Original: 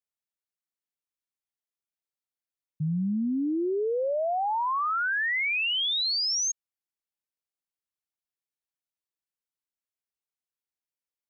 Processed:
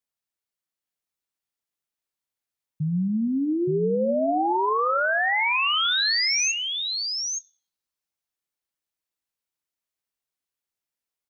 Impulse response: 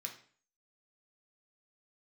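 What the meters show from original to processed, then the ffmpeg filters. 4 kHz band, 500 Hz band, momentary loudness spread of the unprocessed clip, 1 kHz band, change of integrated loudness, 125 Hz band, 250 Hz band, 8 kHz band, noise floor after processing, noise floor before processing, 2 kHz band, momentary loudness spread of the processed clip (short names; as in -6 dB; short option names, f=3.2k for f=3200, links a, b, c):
+4.5 dB, +4.5 dB, 5 LU, +4.5 dB, +3.5 dB, +4.0 dB, +4.5 dB, n/a, under -85 dBFS, under -85 dBFS, +4.5 dB, 7 LU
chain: -filter_complex "[0:a]aecho=1:1:871:0.596,asplit=2[a][b];[1:a]atrim=start_sample=2205,asetrate=23814,aresample=44100,adelay=24[c];[b][c]afir=irnorm=-1:irlink=0,volume=-16.5dB[d];[a][d]amix=inputs=2:normalize=0,volume=3dB"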